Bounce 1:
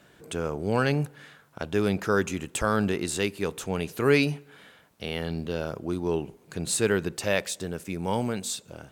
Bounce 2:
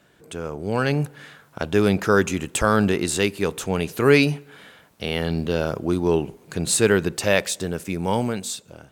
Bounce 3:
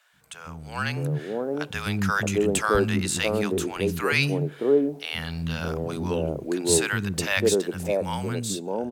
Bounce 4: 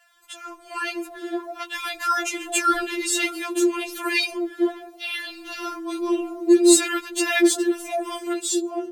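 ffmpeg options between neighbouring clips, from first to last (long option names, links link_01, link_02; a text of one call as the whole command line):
ffmpeg -i in.wav -af "dynaudnorm=framelen=390:gausssize=5:maxgain=10dB,volume=-1.5dB" out.wav
ffmpeg -i in.wav -filter_complex "[0:a]acrossover=split=230|780[link_01][link_02][link_03];[link_01]adelay=130[link_04];[link_02]adelay=620[link_05];[link_04][link_05][link_03]amix=inputs=3:normalize=0,volume=-1.5dB" out.wav
ffmpeg -i in.wav -af "afftfilt=real='re*4*eq(mod(b,16),0)':imag='im*4*eq(mod(b,16),0)':win_size=2048:overlap=0.75,volume=6dB" out.wav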